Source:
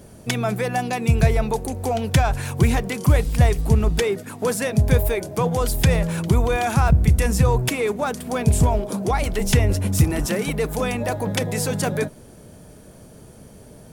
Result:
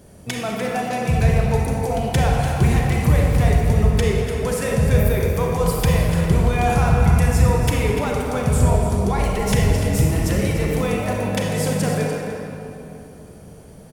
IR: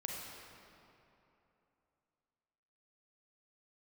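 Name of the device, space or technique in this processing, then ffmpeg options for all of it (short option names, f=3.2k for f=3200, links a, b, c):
cave: -filter_complex "[0:a]aecho=1:1:295:0.282[a];[1:a]atrim=start_sample=2205[b];[a][b]afir=irnorm=-1:irlink=0"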